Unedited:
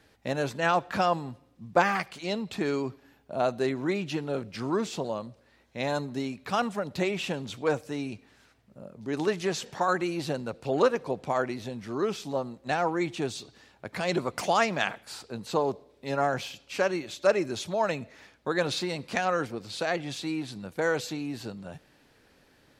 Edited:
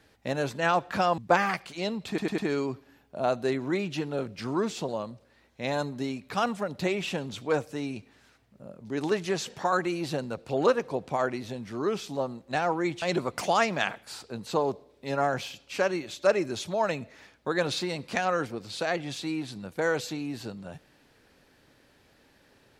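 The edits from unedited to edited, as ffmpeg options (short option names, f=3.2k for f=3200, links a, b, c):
-filter_complex "[0:a]asplit=6[a][b][c][d][e][f];[a]atrim=end=1.182[g];[b]atrim=start=1.638:end=2.642[h];[c]atrim=start=2.538:end=2.642[i];[d]atrim=start=2.538:end=2.642[j];[e]atrim=start=2.538:end=13.182[k];[f]atrim=start=14.018[l];[g][h]acrossfade=d=0.004:c1=hsin:c2=hsin[m];[m][i]acrossfade=d=0.004:c1=hsin:c2=hsin[n];[n][j]acrossfade=d=0.004:c1=hsin:c2=hsin[o];[o][k]acrossfade=d=0.004:c1=hsin:c2=hsin[p];[p][l]acrossfade=d=0.004:c1=hsin:c2=hsin"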